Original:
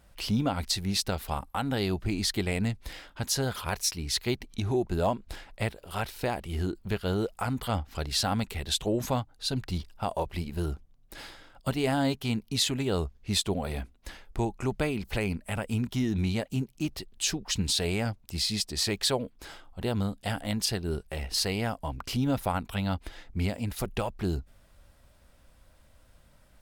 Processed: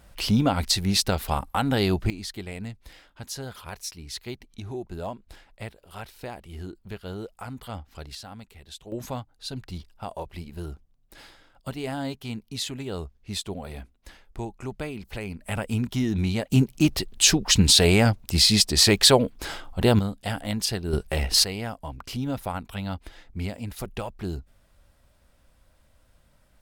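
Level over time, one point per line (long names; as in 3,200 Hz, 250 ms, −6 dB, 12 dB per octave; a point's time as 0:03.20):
+6 dB
from 0:02.10 −7 dB
from 0:08.15 −14 dB
from 0:08.92 −4.5 dB
from 0:15.40 +3 dB
from 0:16.52 +11 dB
from 0:19.99 +2 dB
from 0:20.93 +9 dB
from 0:21.44 −2 dB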